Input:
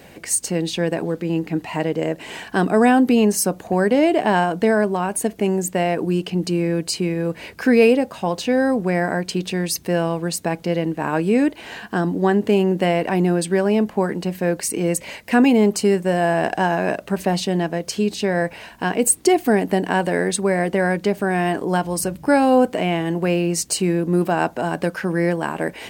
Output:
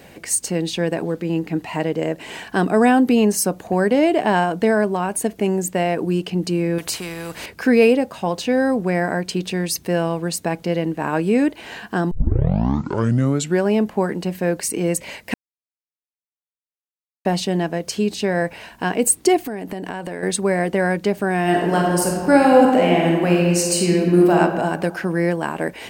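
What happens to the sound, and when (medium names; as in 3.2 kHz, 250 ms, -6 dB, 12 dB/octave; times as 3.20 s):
6.78–7.46 s: spectrum-flattening compressor 2:1
12.11 s: tape start 1.51 s
15.34–17.25 s: mute
19.37–20.23 s: compression 8:1, threshold -24 dBFS
21.42–24.37 s: reverb throw, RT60 1.6 s, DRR -1.5 dB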